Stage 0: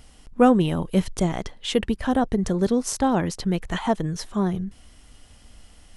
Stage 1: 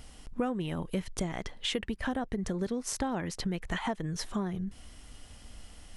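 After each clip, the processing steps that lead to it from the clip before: dynamic bell 2 kHz, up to +6 dB, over -44 dBFS, Q 1.5; compression 6:1, threshold -30 dBFS, peak gain reduction 17.5 dB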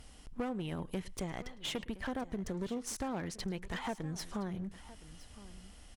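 delay 109 ms -24 dB; one-sided clip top -35 dBFS; delay 1016 ms -17.5 dB; trim -4 dB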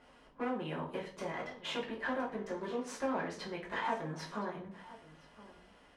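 band-pass filter 1.2 kHz, Q 0.73; reverberation RT60 0.45 s, pre-delay 5 ms, DRR -4.5 dB; tape noise reduction on one side only decoder only

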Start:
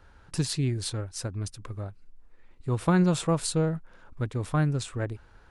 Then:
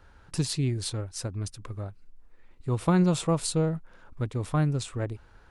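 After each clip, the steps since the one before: dynamic bell 1.6 kHz, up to -5 dB, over -53 dBFS, Q 3.6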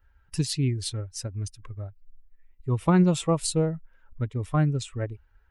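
expander on every frequency bin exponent 1.5; trim +3.5 dB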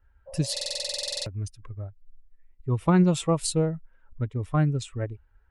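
spectral replace 0.30–1.24 s, 480–1100 Hz after; buffer glitch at 0.52 s, samples 2048, times 15; tape noise reduction on one side only decoder only

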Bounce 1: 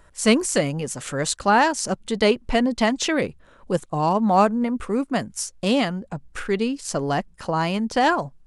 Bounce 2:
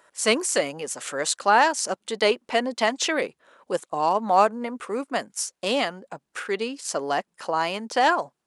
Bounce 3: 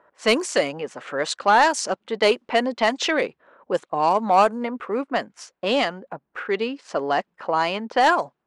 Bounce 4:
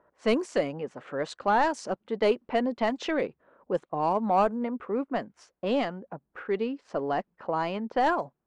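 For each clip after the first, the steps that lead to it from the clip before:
high-pass 420 Hz 12 dB/octave
level-controlled noise filter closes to 1.2 kHz, open at -15.5 dBFS; saturation -10 dBFS, distortion -19 dB; trim +3.5 dB
tilt EQ -3 dB/octave; trim -8 dB

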